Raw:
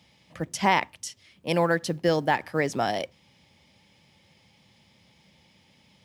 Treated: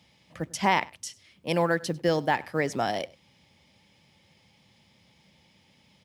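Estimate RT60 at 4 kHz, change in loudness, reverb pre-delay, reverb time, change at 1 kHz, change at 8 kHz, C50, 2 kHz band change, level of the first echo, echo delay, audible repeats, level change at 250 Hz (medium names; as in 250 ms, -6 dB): no reverb, -1.5 dB, no reverb, no reverb, -1.5 dB, -1.5 dB, no reverb, -1.5 dB, -23.0 dB, 98 ms, 1, -1.5 dB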